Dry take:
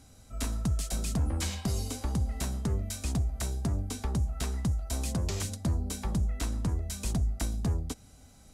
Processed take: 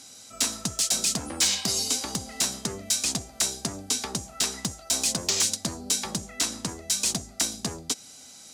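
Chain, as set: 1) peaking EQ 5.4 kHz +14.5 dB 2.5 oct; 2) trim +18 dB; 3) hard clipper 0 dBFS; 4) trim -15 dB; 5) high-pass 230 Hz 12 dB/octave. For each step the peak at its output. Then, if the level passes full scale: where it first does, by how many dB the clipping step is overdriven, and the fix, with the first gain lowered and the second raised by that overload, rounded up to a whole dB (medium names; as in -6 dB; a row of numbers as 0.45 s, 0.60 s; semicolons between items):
-10.5 dBFS, +7.5 dBFS, 0.0 dBFS, -15.0 dBFS, -12.0 dBFS; step 2, 7.5 dB; step 2 +10 dB, step 4 -7 dB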